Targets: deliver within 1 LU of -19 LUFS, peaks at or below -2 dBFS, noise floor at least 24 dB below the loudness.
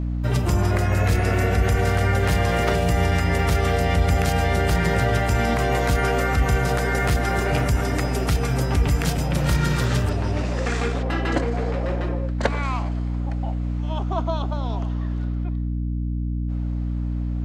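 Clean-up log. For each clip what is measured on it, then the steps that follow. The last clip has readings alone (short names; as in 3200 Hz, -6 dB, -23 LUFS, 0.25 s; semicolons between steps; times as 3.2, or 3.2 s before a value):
hum 60 Hz; harmonics up to 300 Hz; hum level -22 dBFS; loudness -22.5 LUFS; peak -5.5 dBFS; loudness target -19.0 LUFS
-> notches 60/120/180/240/300 Hz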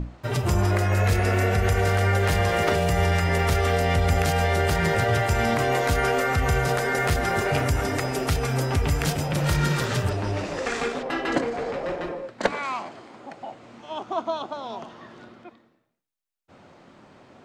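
hum none; loudness -24.0 LUFS; peak -5.0 dBFS; loudness target -19.0 LUFS
-> gain +5 dB; limiter -2 dBFS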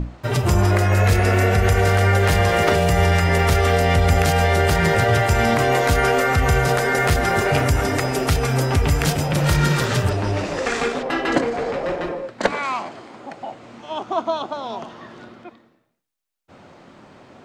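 loudness -19.0 LUFS; peak -2.0 dBFS; noise floor -54 dBFS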